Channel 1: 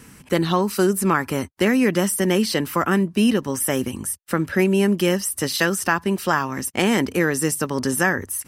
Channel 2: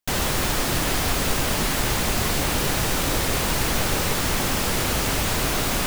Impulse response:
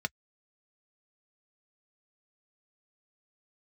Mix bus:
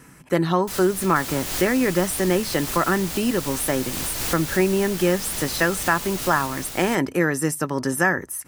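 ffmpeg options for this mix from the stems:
-filter_complex "[0:a]volume=0.794,asplit=3[s0][s1][s2];[s1]volume=0.316[s3];[1:a]highshelf=f=3300:g=10,adelay=600,volume=0.398,asplit=2[s4][s5];[s5]volume=0.355[s6];[s2]apad=whole_len=285122[s7];[s4][s7]sidechaincompress=threshold=0.0282:ratio=5:attack=24:release=211[s8];[2:a]atrim=start_sample=2205[s9];[s3][s9]afir=irnorm=-1:irlink=0[s10];[s6]aecho=0:1:484:1[s11];[s0][s8][s10][s11]amix=inputs=4:normalize=0"

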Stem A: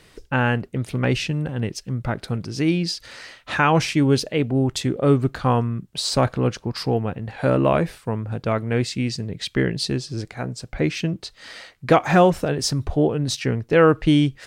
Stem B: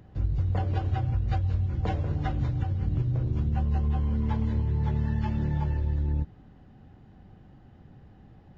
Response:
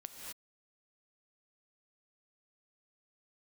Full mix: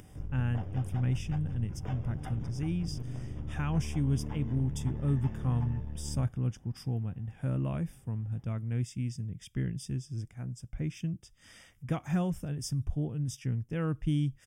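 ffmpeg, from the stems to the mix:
-filter_complex "[0:a]firequalizer=gain_entry='entry(120,0);entry(420,-18);entry(9400,-4)':delay=0.05:min_phase=1,volume=0.501[s0];[1:a]aeval=exprs='clip(val(0),-1,0.0251)':c=same,flanger=delay=6.6:depth=1.1:regen=78:speed=0.68:shape=triangular,volume=0.596[s1];[s0][s1]amix=inputs=2:normalize=0,acompressor=mode=upward:threshold=0.00562:ratio=2.5,asuperstop=centerf=4200:order=12:qfactor=3.8"

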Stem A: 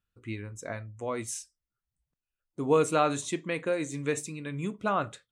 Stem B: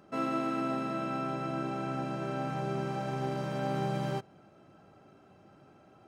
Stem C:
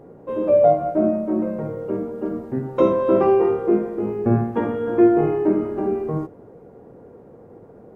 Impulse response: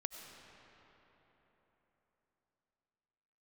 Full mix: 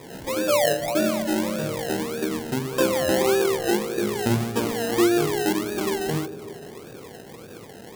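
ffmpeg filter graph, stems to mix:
-filter_complex "[0:a]volume=0.15[s0];[1:a]asoftclip=type=tanh:threshold=0.0158,volume=0.891[s1];[2:a]highpass=50,volume=1.19,asplit=2[s2][s3];[s3]volume=0.251[s4];[s1][s2]amix=inputs=2:normalize=0,acrusher=samples=30:mix=1:aa=0.000001:lfo=1:lforange=18:lforate=1.7,acompressor=threshold=0.0355:ratio=2,volume=1[s5];[3:a]atrim=start_sample=2205[s6];[s4][s6]afir=irnorm=-1:irlink=0[s7];[s0][s5][s7]amix=inputs=3:normalize=0,highshelf=f=5500:g=5.5"

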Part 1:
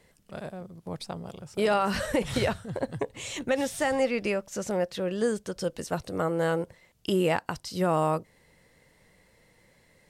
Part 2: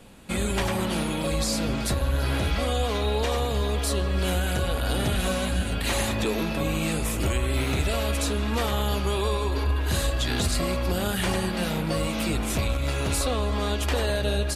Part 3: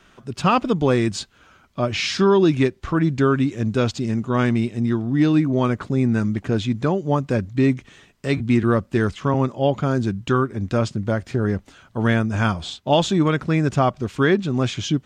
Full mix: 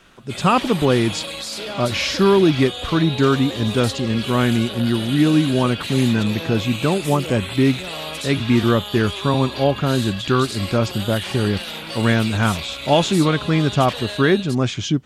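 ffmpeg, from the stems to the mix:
-filter_complex "[0:a]volume=0.531[s0];[1:a]highpass=f=630:p=1,equalizer=f=3400:t=o:w=1.1:g=10.5,dynaudnorm=f=200:g=5:m=3.35,volume=0.335[s1];[2:a]volume=1.19[s2];[s0][s1]amix=inputs=2:normalize=0,alimiter=limit=0.0944:level=0:latency=1:release=28,volume=1[s3];[s2][s3]amix=inputs=2:normalize=0"

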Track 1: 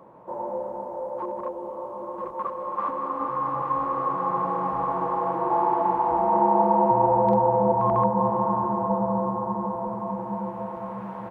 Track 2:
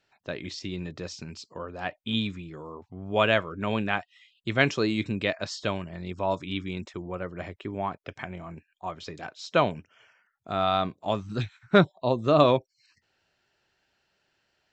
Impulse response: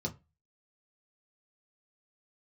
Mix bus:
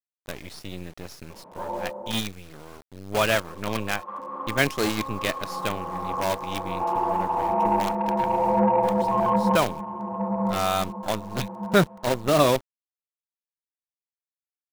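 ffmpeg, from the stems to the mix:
-filter_complex "[0:a]equalizer=f=125:t=o:w=0.33:g=-9,equalizer=f=200:t=o:w=0.33:g=5,equalizer=f=315:t=o:w=0.33:g=-3,asoftclip=type=tanh:threshold=0.282,adelay=1300,volume=1.12,asplit=3[s0][s1][s2];[s0]atrim=end=2.12,asetpts=PTS-STARTPTS,afade=t=out:st=2.116:d=0.004:c=hsin[s3];[s1]atrim=start=2.12:end=3.28,asetpts=PTS-STARTPTS,volume=0[s4];[s2]atrim=start=3.28,asetpts=PTS-STARTPTS,afade=t=in:d=0.004:c=hsin[s5];[s3][s4][s5]concat=n=3:v=0:a=1[s6];[1:a]acrusher=bits=5:dc=4:mix=0:aa=0.000001,volume=1,asplit=2[s7][s8];[s8]apad=whole_len=555696[s9];[s6][s9]sidechaincompress=threshold=0.0398:ratio=16:attack=12:release=1110[s10];[s10][s7]amix=inputs=2:normalize=0"

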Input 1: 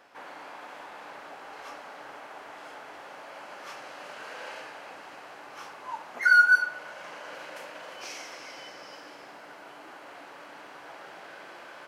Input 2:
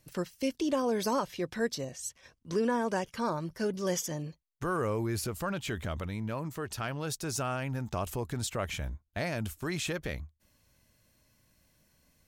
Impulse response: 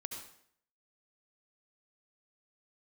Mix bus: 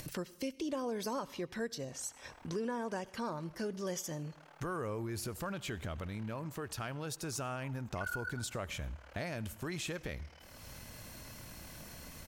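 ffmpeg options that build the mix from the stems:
-filter_complex "[0:a]tremolo=f=38:d=0.974,adelay=1750,volume=0.224,asplit=2[s0][s1];[s1]volume=0.447[s2];[1:a]acompressor=mode=upward:threshold=0.0158:ratio=2.5,volume=1.06,asplit=2[s3][s4];[s4]volume=0.188[s5];[2:a]atrim=start_sample=2205[s6];[s2][s5]amix=inputs=2:normalize=0[s7];[s7][s6]afir=irnorm=-1:irlink=0[s8];[s0][s3][s8]amix=inputs=3:normalize=0,acompressor=threshold=0.00794:ratio=2"

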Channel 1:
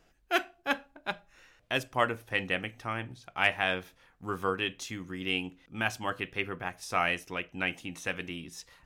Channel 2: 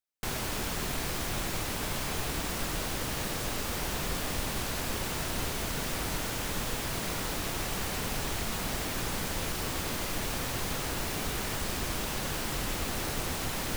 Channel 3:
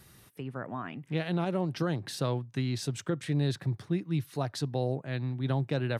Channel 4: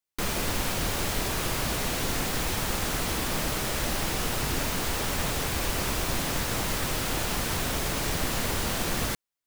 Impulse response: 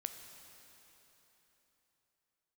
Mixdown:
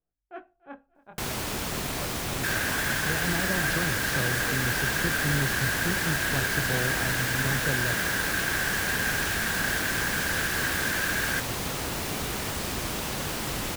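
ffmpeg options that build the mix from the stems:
-filter_complex "[0:a]lowpass=1100,agate=range=0.251:threshold=0.00224:ratio=16:detection=peak,flanger=delay=18:depth=7.3:speed=0.32,volume=0.355,asplit=2[s0][s1];[s1]volume=0.075[s2];[1:a]highpass=f=120:p=1,adelay=950,volume=1.33[s3];[2:a]adelay=1950,volume=0.668[s4];[3:a]aeval=exprs='0.0316*(abs(mod(val(0)/0.0316+3,4)-2)-1)':c=same,highpass=f=1600:t=q:w=13,adelay=2250,volume=0.944[s5];[s2]aecho=0:1:288|576|864|1152|1440|1728:1|0.4|0.16|0.064|0.0256|0.0102[s6];[s0][s3][s4][s5][s6]amix=inputs=5:normalize=0,lowshelf=f=130:g=6"

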